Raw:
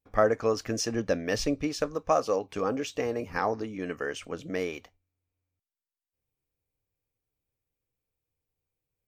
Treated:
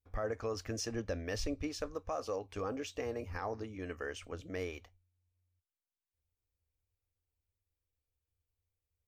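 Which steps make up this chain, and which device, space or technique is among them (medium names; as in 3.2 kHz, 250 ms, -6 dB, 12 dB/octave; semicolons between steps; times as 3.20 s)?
car stereo with a boomy subwoofer (resonant low shelf 110 Hz +7.5 dB, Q 3; peak limiter -20 dBFS, peak gain reduction 9.5 dB); trim -7.5 dB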